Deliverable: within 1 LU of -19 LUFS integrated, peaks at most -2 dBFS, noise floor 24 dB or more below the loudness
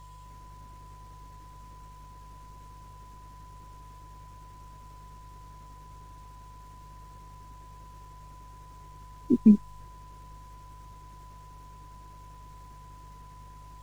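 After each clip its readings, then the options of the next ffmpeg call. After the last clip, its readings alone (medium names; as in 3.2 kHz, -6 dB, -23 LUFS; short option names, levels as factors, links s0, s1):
hum 50 Hz; highest harmonic 150 Hz; hum level -47 dBFS; steady tone 1 kHz; tone level -50 dBFS; loudness -23.0 LUFS; peak level -8.5 dBFS; loudness target -19.0 LUFS
-> -af "bandreject=f=50:t=h:w=4,bandreject=f=100:t=h:w=4,bandreject=f=150:t=h:w=4"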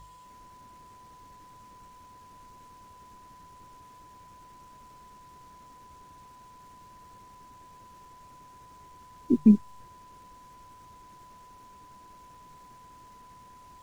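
hum not found; steady tone 1 kHz; tone level -50 dBFS
-> -af "bandreject=f=1000:w=30"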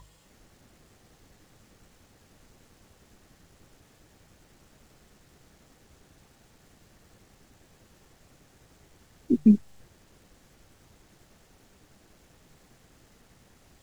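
steady tone not found; loudness -23.0 LUFS; peak level -8.5 dBFS; loudness target -19.0 LUFS
-> -af "volume=1.58"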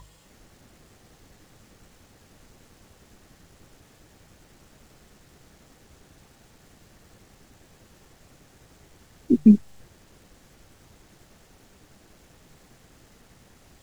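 loudness -19.0 LUFS; peak level -4.5 dBFS; noise floor -58 dBFS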